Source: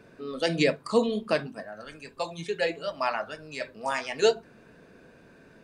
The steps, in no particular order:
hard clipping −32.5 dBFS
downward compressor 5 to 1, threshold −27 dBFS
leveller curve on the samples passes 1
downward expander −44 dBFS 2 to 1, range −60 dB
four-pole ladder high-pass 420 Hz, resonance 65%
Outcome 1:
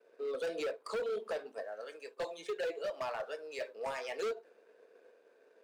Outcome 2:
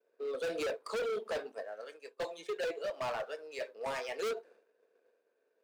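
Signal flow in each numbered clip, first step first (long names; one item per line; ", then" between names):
downward compressor, then leveller curve on the samples, then downward expander, then four-pole ladder high-pass, then hard clipping
leveller curve on the samples, then four-pole ladder high-pass, then downward expander, then hard clipping, then downward compressor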